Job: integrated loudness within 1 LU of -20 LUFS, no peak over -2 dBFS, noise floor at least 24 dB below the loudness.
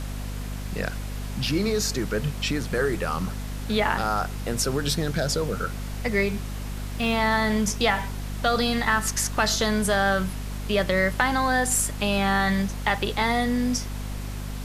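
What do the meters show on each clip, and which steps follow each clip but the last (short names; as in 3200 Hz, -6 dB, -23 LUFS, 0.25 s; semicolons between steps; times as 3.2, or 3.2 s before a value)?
hum 50 Hz; harmonics up to 250 Hz; hum level -30 dBFS; noise floor -33 dBFS; noise floor target -49 dBFS; loudness -25.0 LUFS; peak -7.0 dBFS; loudness target -20.0 LUFS
-> de-hum 50 Hz, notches 5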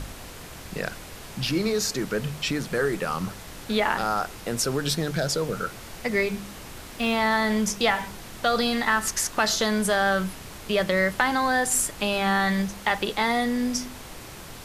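hum none; noise floor -41 dBFS; noise floor target -49 dBFS
-> noise print and reduce 8 dB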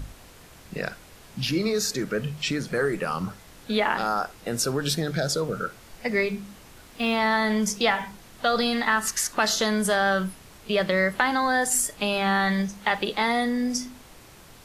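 noise floor -49 dBFS; loudness -25.0 LUFS; peak -6.0 dBFS; loudness target -20.0 LUFS
-> gain +5 dB; limiter -2 dBFS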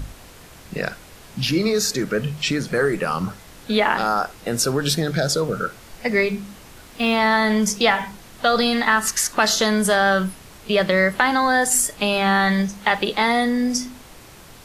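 loudness -20.0 LUFS; peak -2.0 dBFS; noise floor -44 dBFS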